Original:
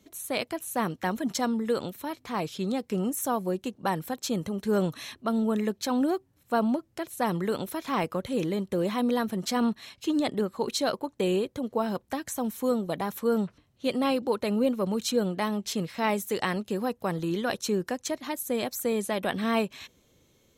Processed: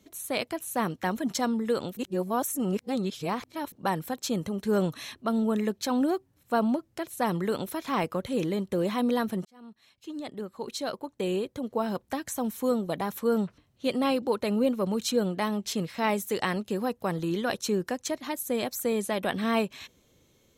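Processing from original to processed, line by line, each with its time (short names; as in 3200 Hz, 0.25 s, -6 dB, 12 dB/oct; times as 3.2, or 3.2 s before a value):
1.97–3.72 reverse
9.45–12.06 fade in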